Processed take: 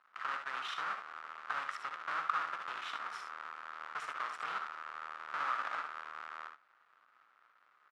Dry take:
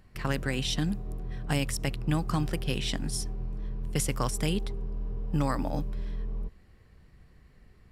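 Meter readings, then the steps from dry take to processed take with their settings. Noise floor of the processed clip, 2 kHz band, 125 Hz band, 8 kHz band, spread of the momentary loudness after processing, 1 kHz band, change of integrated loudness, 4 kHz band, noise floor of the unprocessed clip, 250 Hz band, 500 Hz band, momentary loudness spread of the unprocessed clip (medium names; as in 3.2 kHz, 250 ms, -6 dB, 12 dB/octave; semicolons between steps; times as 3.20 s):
-70 dBFS, 0.0 dB, under -40 dB, -23.5 dB, 10 LU, +2.0 dB, -8.0 dB, -11.5 dB, -58 dBFS, -33.5 dB, -18.0 dB, 9 LU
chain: square wave that keeps the level; peak limiter -20 dBFS, peak gain reduction 30 dB; ladder band-pass 1.4 kHz, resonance 70%; on a send: early reflections 62 ms -9 dB, 75 ms -9.5 dB; on the sum: trim +5 dB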